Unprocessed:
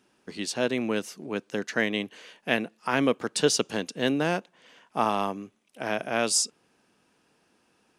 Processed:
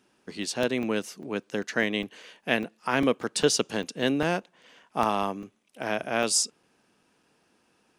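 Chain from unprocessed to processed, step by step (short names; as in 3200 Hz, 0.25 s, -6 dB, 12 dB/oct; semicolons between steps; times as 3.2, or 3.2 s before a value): crackling interface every 0.20 s, samples 128, zero, from 0.43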